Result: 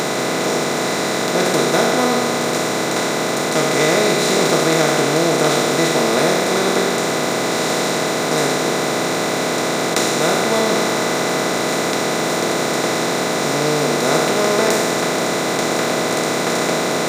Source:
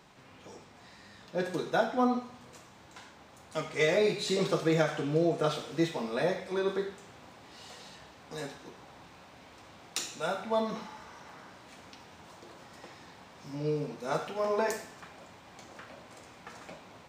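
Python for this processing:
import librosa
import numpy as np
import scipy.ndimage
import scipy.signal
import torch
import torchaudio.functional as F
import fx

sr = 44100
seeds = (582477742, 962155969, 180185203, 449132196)

y = fx.bin_compress(x, sr, power=0.2)
y = fx.high_shelf(y, sr, hz=4500.0, db=8.5)
y = y * 10.0 ** (3.5 / 20.0)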